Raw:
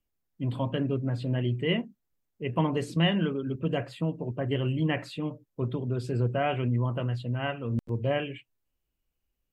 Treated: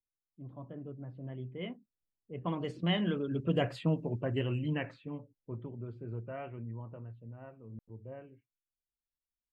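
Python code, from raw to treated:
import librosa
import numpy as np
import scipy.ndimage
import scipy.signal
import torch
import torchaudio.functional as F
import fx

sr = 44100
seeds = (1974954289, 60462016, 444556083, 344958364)

y = fx.doppler_pass(x, sr, speed_mps=16, closest_m=8.0, pass_at_s=3.75)
y = fx.env_lowpass(y, sr, base_hz=510.0, full_db=-29.0)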